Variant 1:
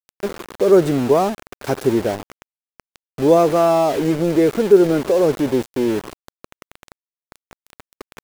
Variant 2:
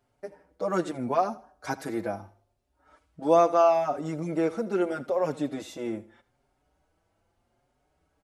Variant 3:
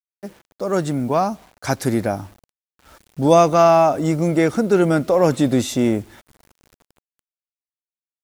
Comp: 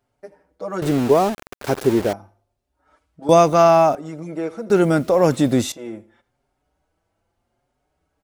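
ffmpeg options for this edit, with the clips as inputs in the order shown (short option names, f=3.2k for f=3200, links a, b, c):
-filter_complex "[2:a]asplit=2[a][b];[1:a]asplit=4[c][d][e][f];[c]atrim=end=0.822[g];[0:a]atrim=start=0.818:end=2.132[h];[d]atrim=start=2.128:end=3.292[i];[a]atrim=start=3.288:end=3.952[j];[e]atrim=start=3.948:end=4.702[k];[b]atrim=start=4.698:end=5.722[l];[f]atrim=start=5.718[m];[g][h]acrossfade=d=0.004:c1=hsin:c2=hsin[n];[n][i]acrossfade=d=0.004:c1=hsin:c2=hsin[o];[o][j]acrossfade=d=0.004:c1=hsin:c2=hsin[p];[p][k]acrossfade=d=0.004:c1=hsin:c2=hsin[q];[q][l]acrossfade=d=0.004:c1=hsin:c2=hsin[r];[r][m]acrossfade=d=0.004:c1=hsin:c2=hsin"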